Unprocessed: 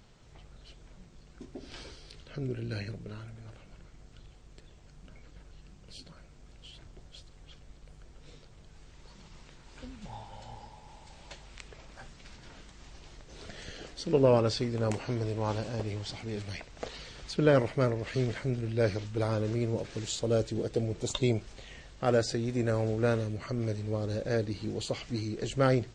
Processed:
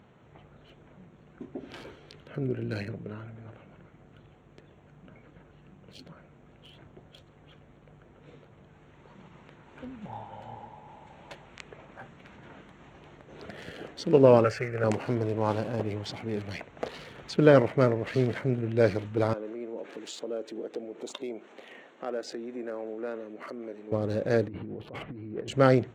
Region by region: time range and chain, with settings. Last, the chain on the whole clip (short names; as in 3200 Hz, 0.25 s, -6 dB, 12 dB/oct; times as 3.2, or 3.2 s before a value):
14.44–14.84 band shelf 1700 Hz +8.5 dB + fixed phaser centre 1000 Hz, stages 6
19.33–23.92 compressor 2.5:1, threshold -40 dBFS + HPF 250 Hz 24 dB/oct
24.48–25.48 negative-ratio compressor -41 dBFS + air absorption 430 m
whole clip: Wiener smoothing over 9 samples; HPF 130 Hz 12 dB/oct; high shelf 3900 Hz -6.5 dB; gain +5.5 dB